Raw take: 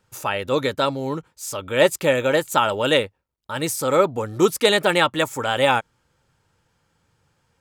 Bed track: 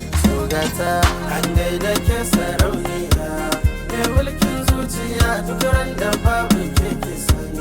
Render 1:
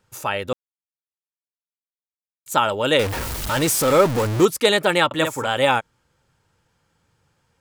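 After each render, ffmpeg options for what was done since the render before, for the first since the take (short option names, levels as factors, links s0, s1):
-filter_complex "[0:a]asettb=1/sr,asplit=3[s0][s1][s2];[s0]atrim=end=2.994[s3];[s1]atrim=start=2.99:end=4.45,asetpts=PTS-STARTPTS,afade=t=in:d=0.004:c=qsin,afade=t=out:st=1.456:d=0.004:c=qsin,aeval=exprs='val(0)+0.5*0.106*sgn(val(0))':c=same[s4];[s2]atrim=start=4.446[s5];[s3][s4]acrossfade=d=0.004:c1=hsin:c2=qsin[s6];[s6][s5]acrossfade=d=0.004:c1=qsin:c2=hsin,asettb=1/sr,asplit=3[s7][s8][s9];[s7]atrim=end=5.064[s10];[s8]atrim=start=5.06:end=5.47,asetpts=PTS-STARTPTS,afade=t=in:d=0.004:c=qsin,afade=t=out:st=0.406:d=0.004:c=qsin,asplit=2[s11][s12];[s12]adelay=50,volume=0.501[s13];[s11][s13]amix=inputs=2:normalize=0,atrim=end_sample=18081[s14];[s9]atrim=start=5.466[s15];[s10][s14]acrossfade=d=0.004:c1=hsin:c2=qsin[s16];[s16][s15]acrossfade=d=0.004:c1=qsin:c2=hsin,asplit=3[s17][s18][s19];[s17]atrim=end=0.53,asetpts=PTS-STARTPTS,afade=t=out:st=0.526:d=0.004:c=hsin[s20];[s18]atrim=start=0.53:end=2.46,asetpts=PTS-STARTPTS,volume=0[s21];[s19]atrim=start=2.46,asetpts=PTS-STARTPTS,afade=t=in:d=0.004:c=hsin[s22];[s20][s21][s22]concat=n=3:v=0:a=1"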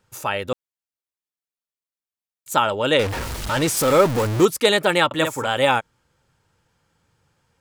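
-filter_complex "[0:a]asettb=1/sr,asplit=3[s0][s1][s2];[s0]atrim=end=2.624[s3];[s1]atrim=start=2.62:end=3.77,asetpts=PTS-STARTPTS,afade=t=in:d=0.004:c=qsin,afade=t=out:st=1.146:d=0.004:c=qsin,highshelf=f=11000:g=-11[s4];[s2]atrim=start=3.766[s5];[s3][s4]acrossfade=d=0.004:c1=hsin:c2=qsin[s6];[s6][s5]acrossfade=d=0.004:c1=qsin:c2=hsin"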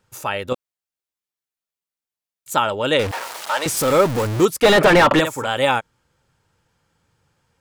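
-filter_complex "[0:a]asettb=1/sr,asplit=3[s0][s1][s2];[s0]atrim=end=0.504[s3];[s1]atrim=start=0.5:end=2.53,asetpts=PTS-STARTPTS,afade=t=in:d=0.004:c=qsin,afade=t=out:st=2.026:d=0.004:c=qsin,asplit=2[s4][s5];[s5]adelay=16,volume=0.631[s6];[s4][s6]amix=inputs=2:normalize=0,atrim=end_sample=89523[s7];[s2]atrim=start=2.526[s8];[s3][s7]acrossfade=d=0.004:c1=hsin:c2=qsin[s9];[s9][s8]acrossfade=d=0.004:c1=qsin:c2=hsin,asettb=1/sr,asplit=3[s10][s11][s12];[s10]atrim=end=3.114[s13];[s11]atrim=start=3.11:end=3.66,asetpts=PTS-STARTPTS,afade=t=in:d=0.004:c=qsin,afade=t=out:st=0.546:d=0.004:c=qsin,highpass=f=730:t=q:w=1.5[s14];[s12]atrim=start=3.656[s15];[s13][s14]acrossfade=d=0.004:c1=hsin:c2=qsin[s16];[s16][s15]acrossfade=d=0.004:c1=qsin:c2=hsin,asplit=3[s17][s18][s19];[s17]afade=t=out:st=4.62:d=0.02[s20];[s18]asplit=2[s21][s22];[s22]highpass=f=720:p=1,volume=44.7,asoftclip=type=tanh:threshold=0.708[s23];[s21][s23]amix=inputs=2:normalize=0,lowpass=f=1300:p=1,volume=0.501,afade=t=in:st=4.62:d=0.02,afade=t=out:st=5.19:d=0.02[s24];[s19]afade=t=in:st=5.19:d=0.02[s25];[s20][s24][s25]amix=inputs=3:normalize=0"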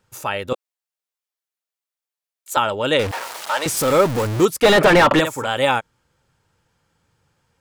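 -filter_complex "[0:a]asettb=1/sr,asplit=3[s0][s1][s2];[s0]atrim=end=0.534[s3];[s1]atrim=start=0.53:end=2.57,asetpts=PTS-STARTPTS,afade=t=in:d=0.004:c=qsin,afade=t=out:st=2.036:d=0.004:c=qsin,highpass=f=410:w=0.5412,highpass=f=410:w=1.3066[s4];[s2]atrim=start=2.566[s5];[s3][s4]acrossfade=d=0.004:c1=hsin:c2=qsin[s6];[s6][s5]acrossfade=d=0.004:c1=qsin:c2=hsin"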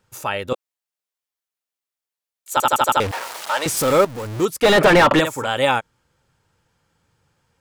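-filter_complex "[0:a]asplit=8[s0][s1][s2][s3][s4][s5][s6][s7];[s0]atrim=end=2.602[s8];[s1]atrim=start=2.518:end=2.602[s9];[s2]atrim=start=2.518:end=2.602[s10];[s3]atrim=start=2.518:end=2.602[s11];[s4]atrim=start=2.518:end=2.602[s12];[s5]atrim=start=2.518:end=2.602[s13];[s6]atrim=start=2.998:end=4.05,asetpts=PTS-STARTPTS,afade=t=out:st=1.048:d=0.004:c=hsin:silence=0.211349[s14];[s7]atrim=start=4.05,asetpts=PTS-STARTPTS,afade=t=in:d=0.75:silence=0.211349[s15];[s8][s9]acrossfade=d=0.004:c1=hsin:c2=hsin[s16];[s16][s10]acrossfade=d=0.004:c1=hsin:c2=hsin[s17];[s17][s11]acrossfade=d=0.004:c1=hsin:c2=hsin[s18];[s18][s12]acrossfade=d=0.004:c1=hsin:c2=hsin[s19];[s19][s13]acrossfade=d=0.004:c1=hsin:c2=hsin[s20];[s14][s15]concat=n=2:v=0:a=1[s21];[s20][s21]acrossfade=d=0.004:c1=hsin:c2=hsin"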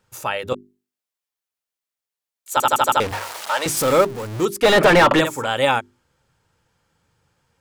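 -af "bandreject=f=50:t=h:w=6,bandreject=f=100:t=h:w=6,bandreject=f=150:t=h:w=6,bandreject=f=200:t=h:w=6,bandreject=f=250:t=h:w=6,bandreject=f=300:t=h:w=6,bandreject=f=350:t=h:w=6,bandreject=f=400:t=h:w=6"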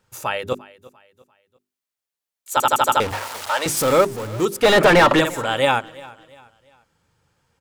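-af "aecho=1:1:346|692|1038:0.0891|0.0339|0.0129"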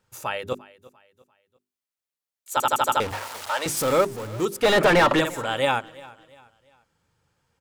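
-af "volume=0.596"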